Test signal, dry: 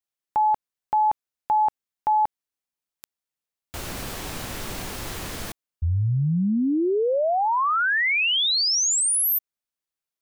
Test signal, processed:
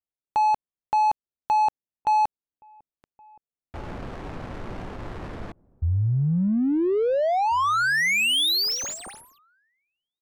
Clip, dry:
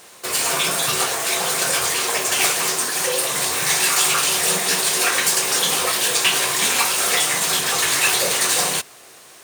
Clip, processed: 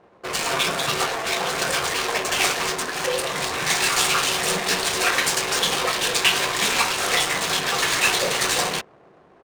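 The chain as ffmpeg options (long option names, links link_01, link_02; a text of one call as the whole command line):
ffmpeg -i in.wav -filter_complex "[0:a]asplit=2[link_01][link_02];[link_02]adelay=1691,volume=-24dB,highshelf=frequency=4000:gain=-38[link_03];[link_01][link_03]amix=inputs=2:normalize=0,adynamicsmooth=sensitivity=3:basefreq=700" out.wav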